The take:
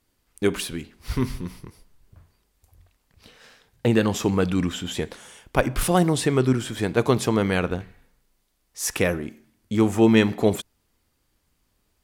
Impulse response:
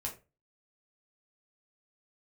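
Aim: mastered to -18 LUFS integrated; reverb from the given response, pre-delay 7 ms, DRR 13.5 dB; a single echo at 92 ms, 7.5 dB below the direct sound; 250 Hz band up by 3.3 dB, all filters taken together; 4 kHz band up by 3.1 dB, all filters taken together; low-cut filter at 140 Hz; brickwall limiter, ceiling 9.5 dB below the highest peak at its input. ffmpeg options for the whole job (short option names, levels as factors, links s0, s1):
-filter_complex "[0:a]highpass=140,equalizer=f=250:t=o:g=5,equalizer=f=4000:t=o:g=4,alimiter=limit=0.299:level=0:latency=1,aecho=1:1:92:0.422,asplit=2[s0][s1];[1:a]atrim=start_sample=2205,adelay=7[s2];[s1][s2]afir=irnorm=-1:irlink=0,volume=0.2[s3];[s0][s3]amix=inputs=2:normalize=0,volume=1.88"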